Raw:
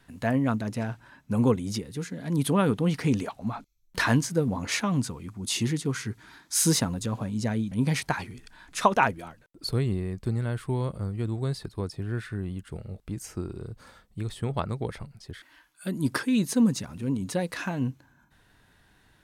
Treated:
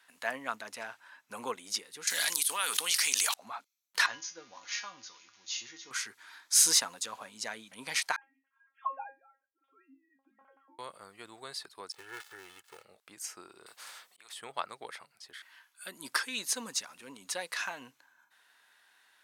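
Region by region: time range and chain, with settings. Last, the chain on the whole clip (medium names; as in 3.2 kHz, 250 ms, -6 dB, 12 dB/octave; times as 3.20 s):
2.07–3.34 s: pre-emphasis filter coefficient 0.97 + level flattener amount 100%
4.06–5.91 s: zero-crossing glitches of -27.5 dBFS + brick-wall FIR low-pass 6.9 kHz + feedback comb 110 Hz, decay 0.3 s, harmonics odd, mix 80%
8.16–10.79 s: formants replaced by sine waves + low-pass 1.2 kHz + feedback comb 270 Hz, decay 0.21 s, mix 100%
11.92–12.85 s: dead-time distortion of 0.27 ms + peaking EQ 220 Hz -4 dB 0.78 oct + comb 2.3 ms, depth 62%
13.66–14.33 s: slow attack 577 ms + spectrum-flattening compressor 2:1
whole clip: high-pass 1 kHz 12 dB/octave; dynamic bell 5.6 kHz, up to +4 dB, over -44 dBFS, Q 1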